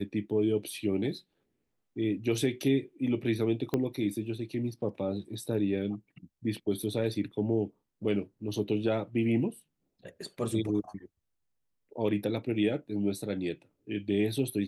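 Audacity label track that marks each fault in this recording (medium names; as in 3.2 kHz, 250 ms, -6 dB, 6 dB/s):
3.740000	3.740000	pop -16 dBFS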